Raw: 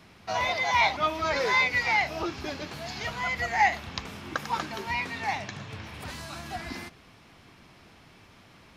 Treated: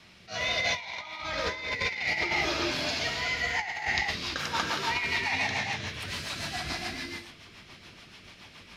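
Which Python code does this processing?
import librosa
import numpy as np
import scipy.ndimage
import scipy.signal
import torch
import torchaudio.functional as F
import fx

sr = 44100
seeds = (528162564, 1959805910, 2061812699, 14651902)

y = fx.peak_eq(x, sr, hz=3800.0, db=9.5, octaves=2.5)
y = fx.rev_gated(y, sr, seeds[0], gate_ms=440, shape='flat', drr_db=-2.5)
y = fx.rotary_switch(y, sr, hz=0.65, then_hz=7.0, switch_at_s=3.49)
y = fx.over_compress(y, sr, threshold_db=-24.0, ratio=-0.5)
y = fx.low_shelf(y, sr, hz=240.0, db=10.0, at=(1.22, 1.87))
y = fx.attack_slew(y, sr, db_per_s=240.0)
y = F.gain(torch.from_numpy(y), -5.0).numpy()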